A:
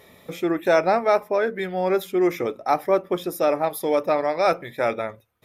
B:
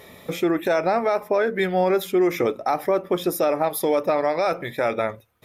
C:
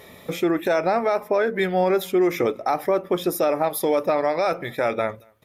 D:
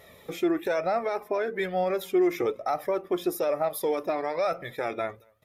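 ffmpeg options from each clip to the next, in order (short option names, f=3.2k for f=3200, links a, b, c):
-af "alimiter=limit=-17.5dB:level=0:latency=1:release=114,volume=5.5dB"
-filter_complex "[0:a]asplit=2[a][b];[b]adelay=227.4,volume=-30dB,highshelf=f=4k:g=-5.12[c];[a][c]amix=inputs=2:normalize=0"
-af "flanger=delay=1.5:depth=1.4:regen=32:speed=1.1:shape=sinusoidal,volume=-3dB"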